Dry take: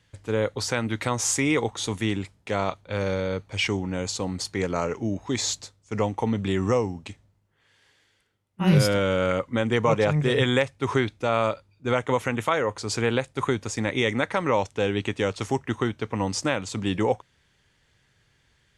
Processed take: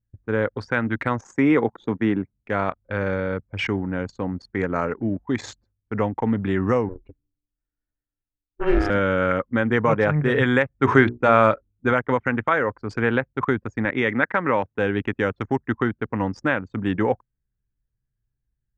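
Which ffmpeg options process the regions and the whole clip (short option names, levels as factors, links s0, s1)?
-filter_complex "[0:a]asettb=1/sr,asplit=3[s0][s1][s2];[s0]atrim=end=1.214[s3];[s1]atrim=start=1.21:end=2.34,asetpts=PTS-STARTPTS,afade=t=in:d=0.004:c=qsin,afade=t=out:st=1.126:d=0.004:c=qsin,highpass=150,tiltshelf=f=1300:g=4[s4];[s2]atrim=start=2.336[s5];[s3][s4]acrossfade=d=0.004:c1=hsin:c2=qsin[s6];[s6][s5]acrossfade=d=0.004:c1=qsin:c2=hsin,asettb=1/sr,asplit=3[s7][s8][s9];[s7]atrim=end=6.894[s10];[s8]atrim=start=6.89:end=8.9,asetpts=PTS-STARTPTS,afade=t=in:d=0.004:c=qsin,afade=t=out:st=2.006:d=0.004:c=qsin,highshelf=f=10000:g=-6,aeval=exprs='val(0)*sin(2*PI*190*n/s)':c=same,aecho=1:1:2.2:0.34,atrim=end_sample=88641[s11];[s9]atrim=start=8.896[s12];[s10][s11]acrossfade=d=0.004:c1=hsin:c2=qsin[s13];[s13][s12]acrossfade=d=0.004:c1=qsin:c2=hsin,asettb=1/sr,asplit=3[s14][s15][s16];[s14]atrim=end=10.714[s17];[s15]atrim=start=10.71:end=11.91,asetpts=PTS-STARTPTS,afade=t=in:d=0.004:c=qsin,afade=t=out:st=1.196:d=0.004:c=qsin,bandreject=f=60:t=h:w=6,bandreject=f=120:t=h:w=6,bandreject=f=180:t=h:w=6,bandreject=f=240:t=h:w=6,bandreject=f=300:t=h:w=6,bandreject=f=360:t=h:w=6,bandreject=f=420:t=h:w=6,bandreject=f=480:t=h:w=6,acontrast=45[s18];[s16]atrim=start=11.906[s19];[s17][s18]acrossfade=d=0.004:c1=hsin:c2=qsin[s20];[s20][s19]acrossfade=d=0.004:c1=qsin:c2=hsin,asettb=1/sr,asplit=3[s21][s22][s23];[s21]atrim=end=13.854[s24];[s22]atrim=start=13.85:end=14.79,asetpts=PTS-STARTPTS,afade=t=in:d=0.004:c=qsin,afade=t=out:st=0.936:d=0.004:c=qsin,highpass=100,lowpass=2700,aemphasis=mode=production:type=75fm[s25];[s23]atrim=start=14.786[s26];[s24][s25]acrossfade=d=0.004:c1=hsin:c2=qsin[s27];[s27][s26]acrossfade=d=0.004:c1=qsin:c2=hsin,aemphasis=mode=reproduction:type=75fm,anlmdn=10,equalizer=f=250:t=o:w=0.67:g=4,equalizer=f=1600:t=o:w=0.67:g=10,equalizer=f=4000:t=o:w=0.67:g=-4"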